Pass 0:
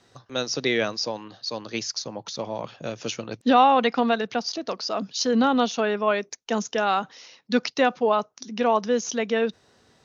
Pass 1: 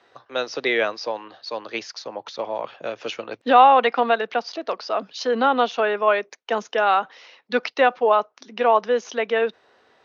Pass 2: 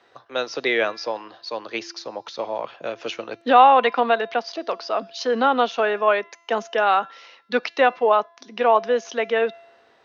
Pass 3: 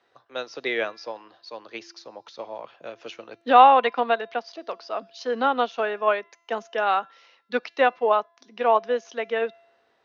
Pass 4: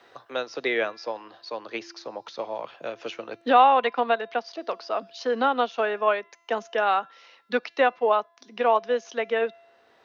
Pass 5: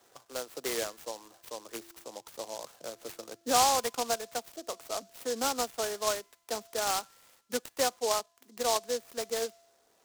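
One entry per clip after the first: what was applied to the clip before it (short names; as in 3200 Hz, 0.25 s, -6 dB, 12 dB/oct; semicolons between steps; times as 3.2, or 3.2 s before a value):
three-band isolator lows -19 dB, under 360 Hz, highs -20 dB, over 3500 Hz; gain +5 dB
resonator 340 Hz, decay 1 s, mix 50%; gain +6 dB
upward expander 1.5:1, over -28 dBFS
three-band squash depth 40%
noise-modulated delay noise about 5300 Hz, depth 0.11 ms; gain -8 dB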